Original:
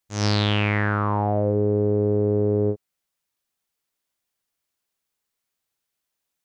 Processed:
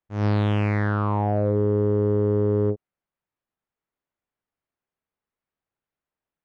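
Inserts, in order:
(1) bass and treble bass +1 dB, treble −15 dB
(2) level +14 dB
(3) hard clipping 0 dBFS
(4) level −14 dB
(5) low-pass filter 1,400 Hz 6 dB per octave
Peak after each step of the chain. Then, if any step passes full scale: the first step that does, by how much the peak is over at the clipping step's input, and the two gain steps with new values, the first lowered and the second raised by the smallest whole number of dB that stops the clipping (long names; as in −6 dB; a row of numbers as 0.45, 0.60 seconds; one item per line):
−11.0, +3.0, 0.0, −14.0, −14.0 dBFS
step 2, 3.0 dB
step 2 +11 dB, step 4 −11 dB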